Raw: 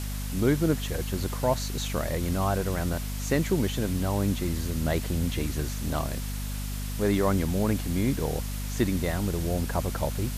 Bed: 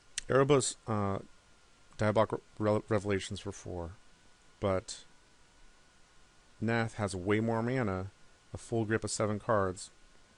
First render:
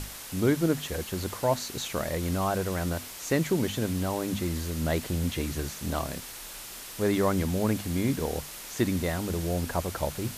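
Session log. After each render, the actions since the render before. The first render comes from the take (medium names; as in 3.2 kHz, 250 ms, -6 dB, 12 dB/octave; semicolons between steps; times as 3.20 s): hum notches 50/100/150/200/250 Hz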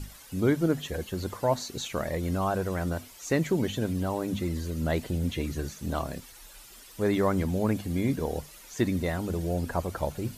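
noise reduction 12 dB, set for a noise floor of -42 dBFS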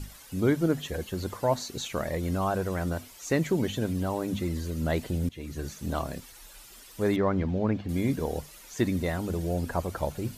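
5.29–5.72 s: fade in, from -18.5 dB; 7.16–7.89 s: distance through air 220 m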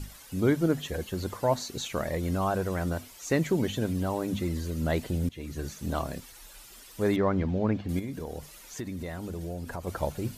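7.99–9.87 s: compression 4:1, threshold -33 dBFS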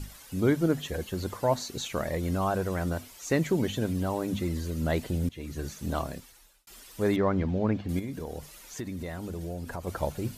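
6.00–6.67 s: fade out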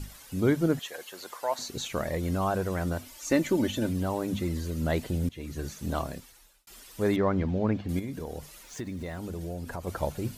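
0.79–1.59 s: high-pass 720 Hz; 3.06–3.89 s: comb 3.4 ms; 8.63–9.17 s: median filter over 3 samples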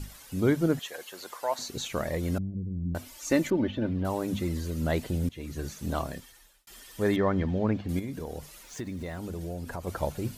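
2.38–2.95 s: inverse Chebyshev low-pass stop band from 850 Hz, stop band 60 dB; 3.50–4.05 s: distance through air 340 m; 6.11–7.64 s: small resonant body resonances 1.8/3.2 kHz, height 11 dB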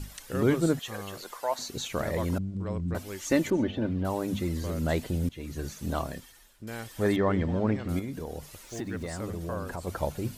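add bed -8 dB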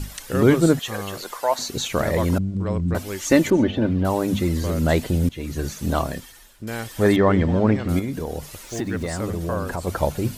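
trim +8.5 dB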